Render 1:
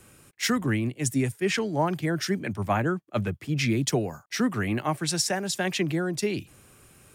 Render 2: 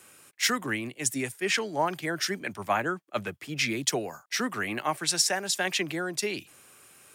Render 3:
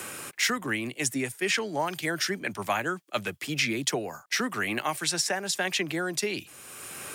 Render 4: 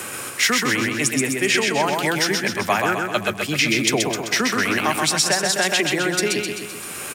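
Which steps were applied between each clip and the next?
high-pass filter 750 Hz 6 dB per octave; level +2.5 dB
multiband upward and downward compressor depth 70%
repeating echo 129 ms, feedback 56%, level −3.5 dB; level +7 dB

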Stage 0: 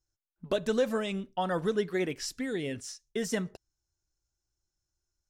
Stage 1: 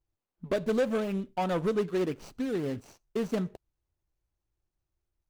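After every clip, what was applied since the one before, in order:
running median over 25 samples
in parallel at −7.5 dB: wave folding −27.5 dBFS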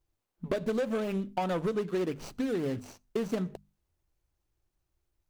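mains-hum notches 50/100/150/200/250 Hz
downward compressor, threshold −32 dBFS, peak gain reduction 9 dB
level +4.5 dB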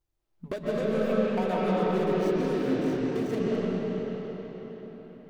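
convolution reverb RT60 5.0 s, pre-delay 100 ms, DRR −8 dB
level −3.5 dB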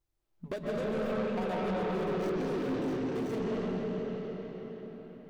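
soft clipping −26.5 dBFS, distortion −11 dB
level −1.5 dB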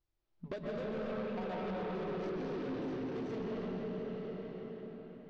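low-pass filter 5,500 Hz 24 dB per octave
downward compressor 3 to 1, threshold −35 dBFS, peak gain reduction 4.5 dB
level −2.5 dB

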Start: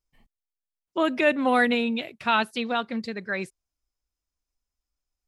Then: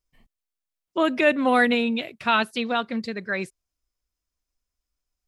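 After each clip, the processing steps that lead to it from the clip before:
notch filter 840 Hz, Q 12
level +2 dB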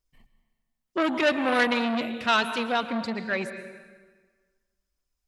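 phase shifter 1 Hz, delay 2.5 ms, feedback 24%
dense smooth reverb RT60 1.5 s, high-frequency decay 0.8×, pre-delay 105 ms, DRR 10.5 dB
saturating transformer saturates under 1,800 Hz

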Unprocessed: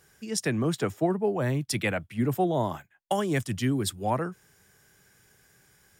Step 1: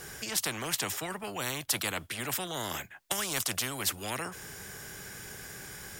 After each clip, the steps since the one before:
every bin compressed towards the loudest bin 4 to 1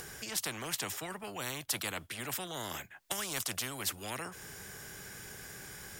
upward compression, threshold −38 dBFS
level −4.5 dB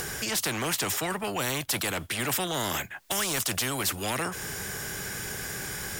in parallel at +1 dB: brickwall limiter −26.5 dBFS, peak gain reduction 9 dB
on the sum: soft clipping −27.5 dBFS, distortion −12 dB
level +6 dB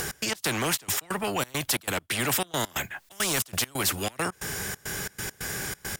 gate pattern "x.x.xxx.x.xxx.x" 136 BPM −24 dB
level +2.5 dB

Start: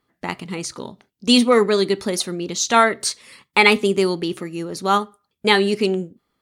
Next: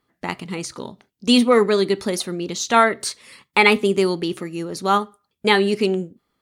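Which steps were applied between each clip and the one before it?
dynamic equaliser 6,200 Hz, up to −5 dB, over −31 dBFS, Q 0.78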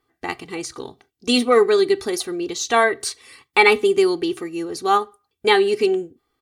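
comb filter 2.6 ms, depth 75%
level −2 dB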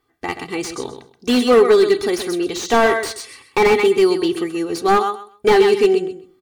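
automatic gain control gain up to 3 dB
on a send: repeating echo 129 ms, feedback 18%, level −9.5 dB
on the sum: slew-rate limiting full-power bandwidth 200 Hz
level +2.5 dB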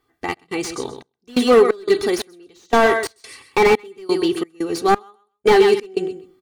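gate pattern "xx.xxx..xx.xx..." 88 BPM −24 dB

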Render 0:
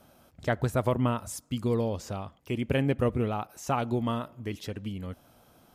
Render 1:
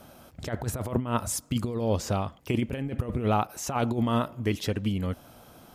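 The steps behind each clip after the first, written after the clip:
compressor whose output falls as the input rises −30 dBFS, ratio −0.5
level +4.5 dB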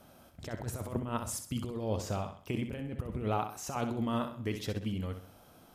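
flutter between parallel walls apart 10.9 metres, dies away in 0.46 s
level −7.5 dB

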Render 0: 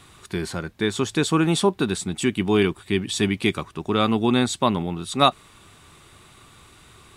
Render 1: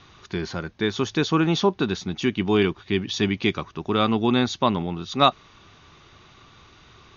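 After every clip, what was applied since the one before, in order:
Chebyshev low-pass filter 6,600 Hz, order 10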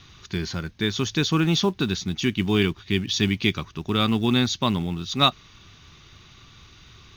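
parametric band 670 Hz −12 dB 2.9 octaves
in parallel at −8.5 dB: floating-point word with a short mantissa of 2 bits
on the sum: level +3 dB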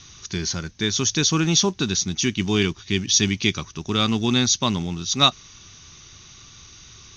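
low-pass with resonance 6,100 Hz, resonance Q 6.7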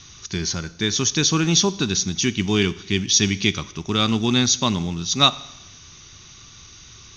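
convolution reverb RT60 0.90 s, pre-delay 36 ms, DRR 17 dB
level +1 dB

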